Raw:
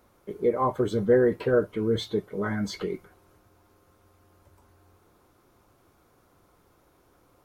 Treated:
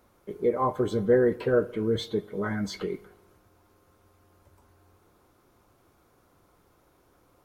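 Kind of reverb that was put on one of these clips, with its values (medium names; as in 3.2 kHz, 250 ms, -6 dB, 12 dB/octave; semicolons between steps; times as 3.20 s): spring tank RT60 1.1 s, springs 41 ms, DRR 18.5 dB; trim -1 dB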